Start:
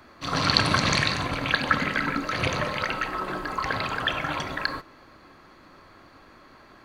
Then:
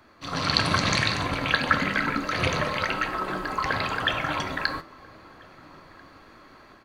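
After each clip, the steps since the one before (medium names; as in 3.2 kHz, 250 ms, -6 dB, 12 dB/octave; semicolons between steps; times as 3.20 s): flange 0.95 Hz, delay 8.8 ms, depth 4.1 ms, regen +74%; level rider gain up to 5.5 dB; echo from a far wall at 230 m, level -22 dB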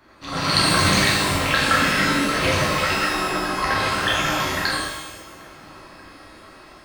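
pitch-shifted reverb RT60 1 s, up +12 st, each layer -8 dB, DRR -5 dB; trim -1 dB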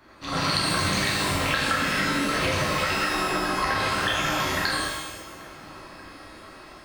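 compression, threshold -21 dBFS, peak gain reduction 7.5 dB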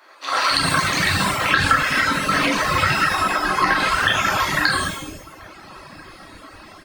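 reverb removal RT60 1.1 s; bands offset in time highs, lows 290 ms, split 430 Hz; dynamic bell 1.4 kHz, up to +5 dB, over -40 dBFS, Q 1.1; trim +6 dB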